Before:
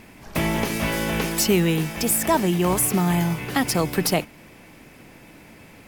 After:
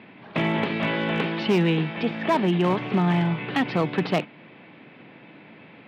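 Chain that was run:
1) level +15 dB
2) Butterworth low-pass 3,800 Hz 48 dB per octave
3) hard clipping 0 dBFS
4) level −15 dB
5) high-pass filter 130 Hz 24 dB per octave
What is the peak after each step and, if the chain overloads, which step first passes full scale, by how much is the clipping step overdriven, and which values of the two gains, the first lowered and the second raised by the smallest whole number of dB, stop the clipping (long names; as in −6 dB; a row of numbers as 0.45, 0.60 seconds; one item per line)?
+7.5, +7.0, 0.0, −15.0, −10.0 dBFS
step 1, 7.0 dB
step 1 +8 dB, step 4 −8 dB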